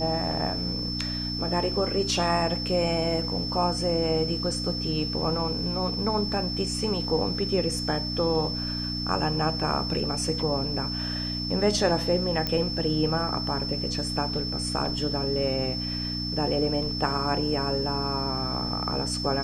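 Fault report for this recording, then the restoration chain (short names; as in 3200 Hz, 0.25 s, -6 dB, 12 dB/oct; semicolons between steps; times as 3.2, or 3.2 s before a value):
hum 60 Hz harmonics 5 -33 dBFS
tone 5300 Hz -31 dBFS
12.47 pop -13 dBFS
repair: de-click; de-hum 60 Hz, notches 5; notch 5300 Hz, Q 30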